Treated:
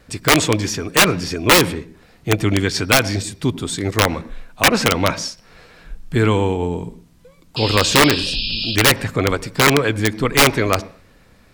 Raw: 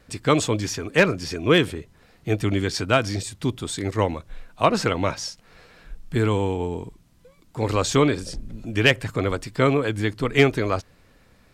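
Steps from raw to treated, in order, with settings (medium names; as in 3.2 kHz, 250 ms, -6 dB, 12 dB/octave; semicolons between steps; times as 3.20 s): integer overflow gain 10.5 dB; dynamic bell 2.1 kHz, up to +4 dB, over -33 dBFS, Q 0.88; painted sound noise, 7.56–8.76 s, 2.4–5.3 kHz -29 dBFS; on a send: reverberation, pre-delay 77 ms, DRR 20 dB; on the sum: trim +5 dB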